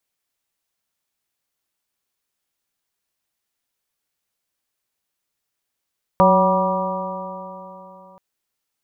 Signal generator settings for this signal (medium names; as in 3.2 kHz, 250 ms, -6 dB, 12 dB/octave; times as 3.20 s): stretched partials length 1.98 s, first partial 184 Hz, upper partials -9.5/3/-4/3/-2 dB, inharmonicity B 0.0039, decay 3.35 s, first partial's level -16.5 dB